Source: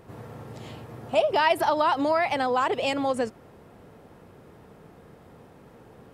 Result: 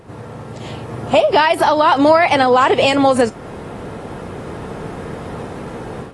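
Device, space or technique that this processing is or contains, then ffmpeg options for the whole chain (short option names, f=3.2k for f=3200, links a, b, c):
low-bitrate web radio: -af "dynaudnorm=f=600:g=3:m=13dB,alimiter=limit=-11.5dB:level=0:latency=1:release=341,volume=8.5dB" -ar 24000 -c:a aac -b:a 32k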